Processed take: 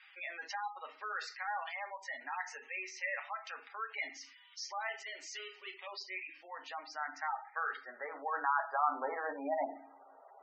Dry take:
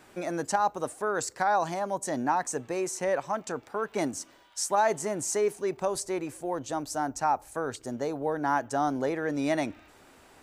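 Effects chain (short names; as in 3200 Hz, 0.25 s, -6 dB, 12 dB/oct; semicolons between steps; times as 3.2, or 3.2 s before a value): speaker cabinet 450–5800 Hz, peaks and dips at 1200 Hz +4 dB, 2000 Hz +7 dB, 4900 Hz +5 dB; limiter -19 dBFS, peak gain reduction 7 dB; 4.89–5.87 hard clip -32 dBFS, distortion -16 dB; band-pass sweep 2800 Hz -> 700 Hz, 6.35–10.03; on a send at -3 dB: reverb RT60 0.50 s, pre-delay 4 ms; on the sum: spectral gate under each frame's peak -15 dB strong; gain +2.5 dB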